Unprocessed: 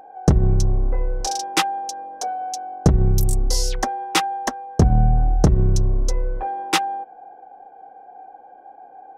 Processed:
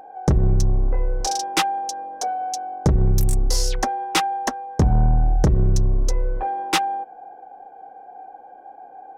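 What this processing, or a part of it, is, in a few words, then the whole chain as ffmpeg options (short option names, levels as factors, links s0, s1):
saturation between pre-emphasis and de-emphasis: -af "highshelf=f=8400:g=7.5,asoftclip=type=tanh:threshold=0.266,highshelf=f=8400:g=-7.5,volume=1.19"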